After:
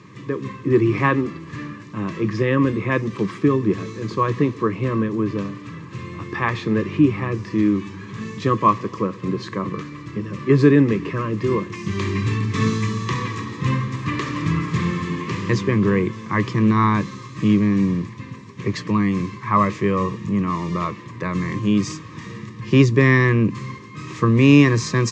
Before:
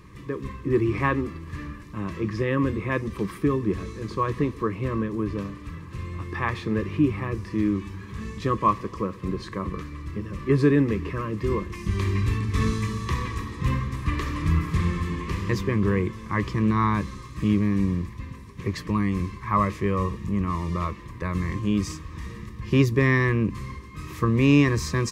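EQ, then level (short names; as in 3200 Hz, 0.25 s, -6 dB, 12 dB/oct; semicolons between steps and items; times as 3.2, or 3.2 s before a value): Chebyshev band-pass 110–7200 Hz, order 4; +6.0 dB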